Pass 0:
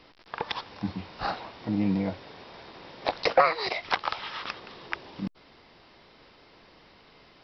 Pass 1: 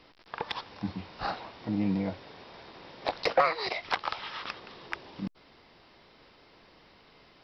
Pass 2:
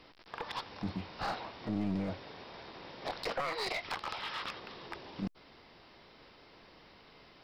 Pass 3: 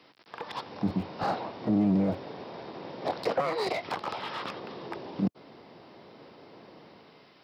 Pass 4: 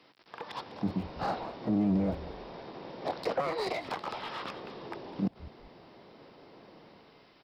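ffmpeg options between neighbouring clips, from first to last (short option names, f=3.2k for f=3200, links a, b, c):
-af "acontrast=68,volume=-9dB"
-af "alimiter=level_in=1dB:limit=-24dB:level=0:latency=1:release=19,volume=-1dB,aeval=exprs='clip(val(0),-1,0.0211)':c=same"
-filter_complex "[0:a]acrossover=split=100|890[a][b][c];[a]acrusher=bits=5:dc=4:mix=0:aa=0.000001[d];[b]dynaudnorm=f=130:g=9:m=10.5dB[e];[d][e][c]amix=inputs=3:normalize=0"
-filter_complex "[0:a]asplit=4[a][b][c][d];[b]adelay=200,afreqshift=-120,volume=-16dB[e];[c]adelay=400,afreqshift=-240,volume=-26.2dB[f];[d]adelay=600,afreqshift=-360,volume=-36.3dB[g];[a][e][f][g]amix=inputs=4:normalize=0,volume=-3dB"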